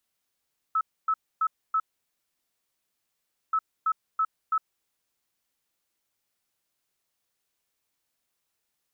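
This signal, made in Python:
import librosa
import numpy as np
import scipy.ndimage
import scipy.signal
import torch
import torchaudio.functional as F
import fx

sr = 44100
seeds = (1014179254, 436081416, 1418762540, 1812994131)

y = fx.beep_pattern(sr, wave='sine', hz=1300.0, on_s=0.06, off_s=0.27, beeps=4, pause_s=1.73, groups=2, level_db=-21.0)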